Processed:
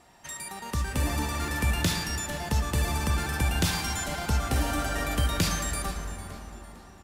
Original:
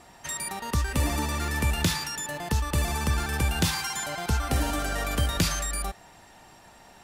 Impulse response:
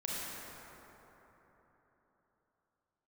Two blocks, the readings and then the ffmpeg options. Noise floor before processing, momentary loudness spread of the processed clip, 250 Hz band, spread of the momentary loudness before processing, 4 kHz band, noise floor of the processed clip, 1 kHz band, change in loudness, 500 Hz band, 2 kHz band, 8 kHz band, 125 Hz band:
−53 dBFS, 13 LU, −0.5 dB, 6 LU, −1.0 dB, −49 dBFS, −1.0 dB, −1.0 dB, −1.0 dB, −0.5 dB, −1.5 dB, −0.5 dB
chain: -filter_complex "[0:a]dynaudnorm=framelen=250:gausssize=7:maxgain=4dB,asplit=4[link_01][link_02][link_03][link_04];[link_02]adelay=452,afreqshift=-140,volume=-15dB[link_05];[link_03]adelay=904,afreqshift=-280,volume=-23.6dB[link_06];[link_04]adelay=1356,afreqshift=-420,volume=-32.3dB[link_07];[link_01][link_05][link_06][link_07]amix=inputs=4:normalize=0,asplit=2[link_08][link_09];[1:a]atrim=start_sample=2205[link_10];[link_09][link_10]afir=irnorm=-1:irlink=0,volume=-7dB[link_11];[link_08][link_11]amix=inputs=2:normalize=0,volume=-8dB"

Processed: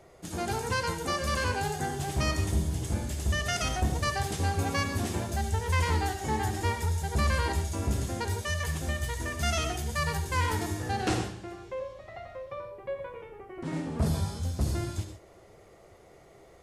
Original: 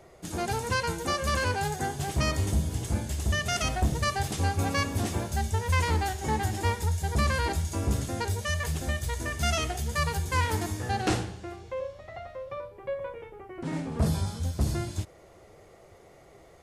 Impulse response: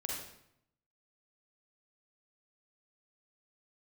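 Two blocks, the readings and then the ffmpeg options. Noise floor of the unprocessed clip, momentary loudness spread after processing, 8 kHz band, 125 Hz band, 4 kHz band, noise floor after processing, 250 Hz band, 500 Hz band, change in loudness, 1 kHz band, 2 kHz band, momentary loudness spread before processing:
−54 dBFS, 11 LU, −1.5 dB, −1.5 dB, −1.0 dB, −55 dBFS, −1.0 dB, −1.0 dB, −1.0 dB, −1.5 dB, −1.0 dB, 11 LU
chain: -filter_complex "[0:a]asplit=2[link_01][link_02];[1:a]atrim=start_sample=2205,afade=type=out:start_time=0.14:duration=0.01,atrim=end_sample=6615,asetrate=26901,aresample=44100[link_03];[link_02][link_03]afir=irnorm=-1:irlink=0,volume=-5.5dB[link_04];[link_01][link_04]amix=inputs=2:normalize=0,volume=-5.5dB"

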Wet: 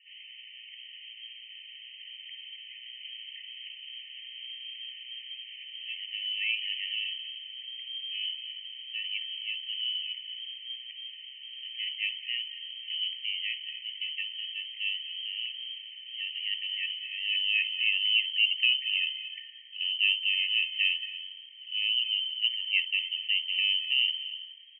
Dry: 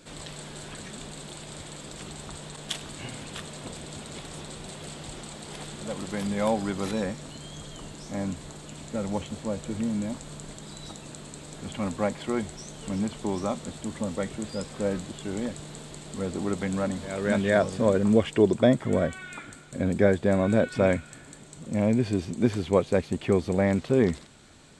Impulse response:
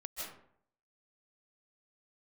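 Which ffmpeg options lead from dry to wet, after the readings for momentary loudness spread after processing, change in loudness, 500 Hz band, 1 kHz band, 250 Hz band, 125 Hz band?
18 LU, −2.0 dB, below −40 dB, below −40 dB, below −40 dB, below −40 dB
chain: -filter_complex "[0:a]aecho=1:1:289:0.0668,asplit=2[link_01][link_02];[link_02]asubboost=boost=11:cutoff=110[link_03];[1:a]atrim=start_sample=2205,adelay=59[link_04];[link_03][link_04]afir=irnorm=-1:irlink=0,volume=-10dB[link_05];[link_01][link_05]amix=inputs=2:normalize=0,lowpass=frequency=2700:width_type=q:width=0.5098,lowpass=frequency=2700:width_type=q:width=0.6013,lowpass=frequency=2700:width_type=q:width=0.9,lowpass=frequency=2700:width_type=q:width=2.563,afreqshift=-3200,afftfilt=real='re*eq(mod(floor(b*sr/1024/1800),2),1)':imag='im*eq(mod(floor(b*sr/1024/1800),2),1)':win_size=1024:overlap=0.75,volume=-6dB"

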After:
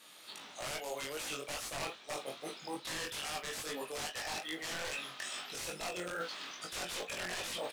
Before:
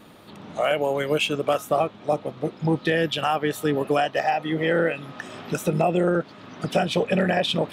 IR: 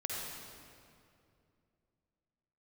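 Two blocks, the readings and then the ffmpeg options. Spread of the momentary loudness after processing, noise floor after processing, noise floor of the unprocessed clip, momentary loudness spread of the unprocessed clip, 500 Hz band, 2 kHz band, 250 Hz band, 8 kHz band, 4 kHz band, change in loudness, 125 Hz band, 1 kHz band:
5 LU, −55 dBFS, −46 dBFS, 9 LU, −20.5 dB, −12.0 dB, −23.0 dB, 0.0 dB, −9.0 dB, −16.0 dB, −26.0 dB, −17.5 dB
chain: -filter_complex "[0:a]asubboost=boost=2.5:cutoff=53,dynaudnorm=framelen=230:gausssize=3:maxgain=15dB,aderivative,asplit=2[link_01][link_02];[link_02]aecho=0:1:36|52:0.168|0.133[link_03];[link_01][link_03]amix=inputs=2:normalize=0,aeval=exprs='(mod(16.8*val(0)+1,2)-1)/16.8':channel_layout=same,areverse,acompressor=threshold=-44dB:ratio=5,areverse,asplit=2[link_04][link_05];[link_05]adelay=22,volume=-8dB[link_06];[link_04][link_06]amix=inputs=2:normalize=0,flanger=delay=18:depth=4.5:speed=2.4,lowpass=9000,acrusher=bits=6:mode=log:mix=0:aa=0.000001,volume=8dB"

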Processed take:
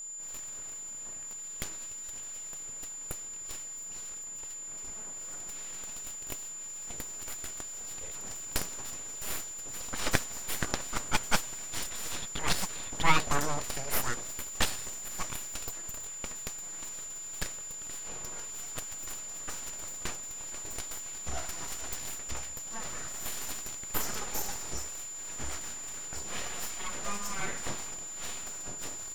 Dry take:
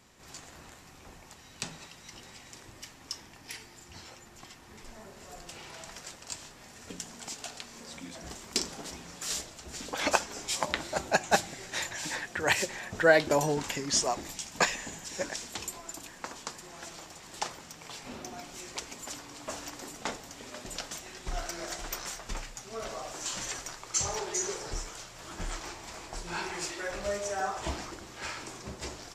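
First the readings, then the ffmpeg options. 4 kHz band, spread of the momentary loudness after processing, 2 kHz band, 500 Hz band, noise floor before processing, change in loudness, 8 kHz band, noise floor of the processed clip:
−2.5 dB, 7 LU, −4.5 dB, −10.5 dB, −53 dBFS, −2.0 dB, +3.0 dB, −42 dBFS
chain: -af "aeval=exprs='abs(val(0))':channel_layout=same,aeval=exprs='val(0)+0.0112*sin(2*PI*7100*n/s)':channel_layout=same"

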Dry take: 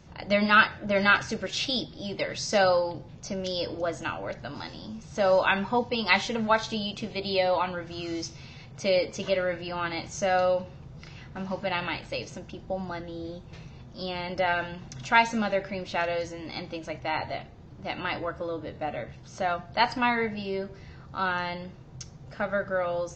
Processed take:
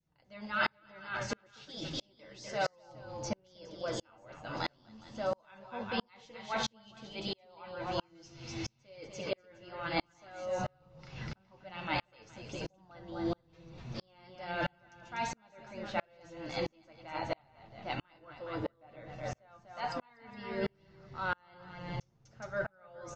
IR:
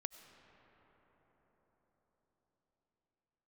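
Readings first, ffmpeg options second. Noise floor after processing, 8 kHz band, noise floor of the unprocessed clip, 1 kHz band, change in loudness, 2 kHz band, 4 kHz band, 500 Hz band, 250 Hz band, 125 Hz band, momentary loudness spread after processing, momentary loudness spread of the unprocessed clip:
−70 dBFS, −9.0 dB, −47 dBFS, −11.5 dB, −11.5 dB, −12.5 dB, −10.5 dB, −12.0 dB, −10.0 dB, −7.0 dB, 16 LU, 18 LU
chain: -af "areverse,acompressor=threshold=-38dB:ratio=5,areverse,aecho=1:1:246|415:0.473|0.398,flanger=delay=6:depth=3.2:regen=49:speed=1.1:shape=sinusoidal,adynamicequalizer=threshold=0.00158:dfrequency=1000:dqfactor=1.2:tfrequency=1000:tqfactor=1.2:attack=5:release=100:ratio=0.375:range=2:mode=boostabove:tftype=bell,aeval=exprs='val(0)*pow(10,-39*if(lt(mod(-1.5*n/s,1),2*abs(-1.5)/1000),1-mod(-1.5*n/s,1)/(2*abs(-1.5)/1000),(mod(-1.5*n/s,1)-2*abs(-1.5)/1000)/(1-2*abs(-1.5)/1000))/20)':channel_layout=same,volume=11.5dB"

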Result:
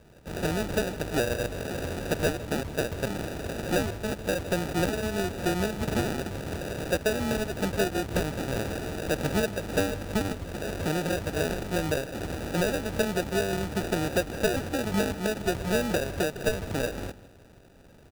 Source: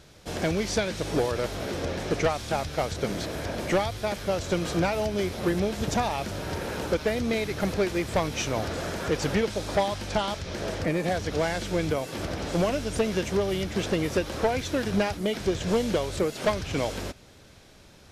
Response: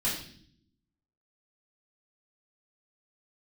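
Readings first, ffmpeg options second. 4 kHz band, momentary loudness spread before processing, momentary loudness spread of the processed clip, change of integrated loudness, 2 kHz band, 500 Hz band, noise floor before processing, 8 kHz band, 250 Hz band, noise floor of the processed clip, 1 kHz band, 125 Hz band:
−2.5 dB, 5 LU, 6 LU, −1.5 dB, +0.5 dB, −2.0 dB, −52 dBFS, 0.0 dB, −1.0 dB, −52 dBFS, −4.0 dB, −0.5 dB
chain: -filter_complex "[0:a]acrusher=samples=41:mix=1:aa=0.000001,asplit=2[link_01][link_02];[link_02]adelay=157.4,volume=-17dB,highshelf=frequency=4000:gain=-3.54[link_03];[link_01][link_03]amix=inputs=2:normalize=0,volume=-1.5dB"

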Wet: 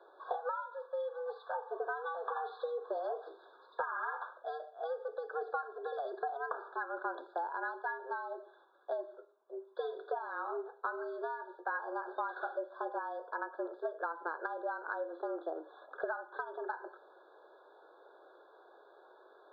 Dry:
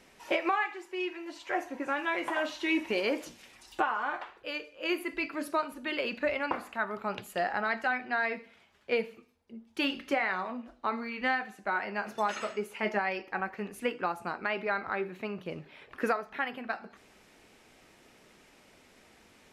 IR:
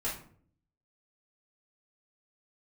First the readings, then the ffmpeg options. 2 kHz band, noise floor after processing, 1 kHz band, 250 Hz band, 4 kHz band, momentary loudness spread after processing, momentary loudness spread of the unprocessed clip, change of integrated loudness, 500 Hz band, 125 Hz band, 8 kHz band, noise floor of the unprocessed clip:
−10.0 dB, −62 dBFS, −4.5 dB, −15.5 dB, −22.0 dB, 8 LU, 9 LU, −7.0 dB, −4.5 dB, below −30 dB, below −25 dB, −61 dBFS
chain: -af "highpass=frequency=180:width_type=q:width=0.5412,highpass=frequency=180:width_type=q:width=1.307,lowpass=frequency=2900:width_type=q:width=0.5176,lowpass=frequency=2900:width_type=q:width=0.7071,lowpass=frequency=2900:width_type=q:width=1.932,afreqshift=160,acompressor=threshold=-35dB:ratio=16,afftfilt=real='re*eq(mod(floor(b*sr/1024/1700),2),0)':imag='im*eq(mod(floor(b*sr/1024/1700),2),0)':win_size=1024:overlap=0.75,volume=2.5dB"

